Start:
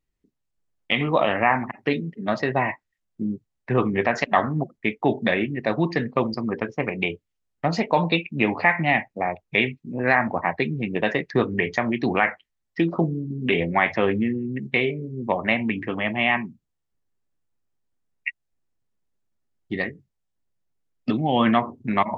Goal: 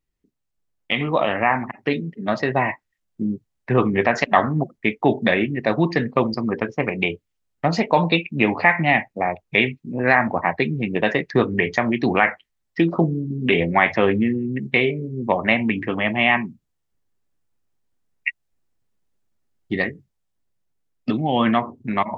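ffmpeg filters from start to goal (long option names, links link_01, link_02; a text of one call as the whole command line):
ffmpeg -i in.wav -af "dynaudnorm=framelen=620:gausssize=7:maxgain=6.5dB" out.wav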